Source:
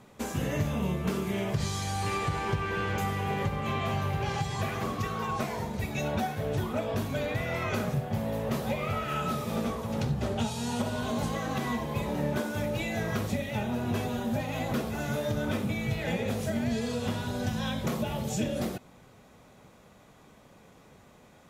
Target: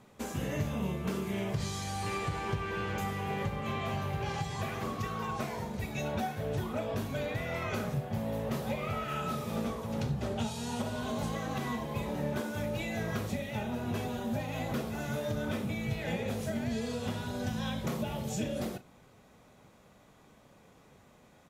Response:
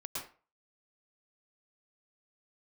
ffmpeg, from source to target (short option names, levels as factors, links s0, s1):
-filter_complex "[0:a]asplit=2[s0][s1];[s1]adelay=36,volume=0.211[s2];[s0][s2]amix=inputs=2:normalize=0,volume=0.631"